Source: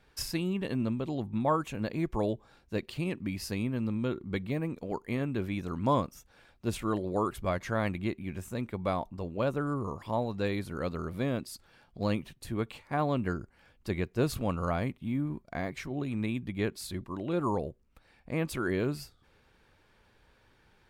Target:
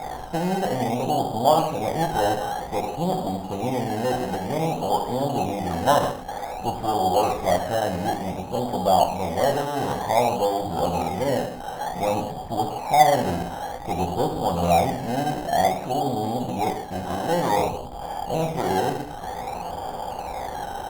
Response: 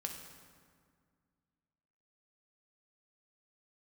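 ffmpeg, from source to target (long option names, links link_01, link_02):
-filter_complex "[0:a]aeval=exprs='val(0)+0.5*0.0355*sgn(val(0))':channel_layout=same,aeval=exprs='0.211*(cos(1*acos(clip(val(0)/0.211,-1,1)))-cos(1*PI/2))+0.0376*(cos(8*acos(clip(val(0)/0.211,-1,1)))-cos(8*PI/2))':channel_layout=same,lowpass=frequency=770:width_type=q:width=9,asplit=2[link_01][link_02];[link_02]adelay=16,volume=-13dB[link_03];[link_01][link_03]amix=inputs=2:normalize=0[link_04];[1:a]atrim=start_sample=2205,afade=type=out:start_time=0.23:duration=0.01,atrim=end_sample=10584[link_05];[link_04][link_05]afir=irnorm=-1:irlink=0,asplit=2[link_06][link_07];[link_07]acrusher=samples=15:mix=1:aa=0.000001:lfo=1:lforange=9:lforate=0.54,volume=-6dB[link_08];[link_06][link_08]amix=inputs=2:normalize=0,lowshelf=frequency=450:gain=-7.5,volume=1dB" -ar 48000 -c:a libopus -b:a 64k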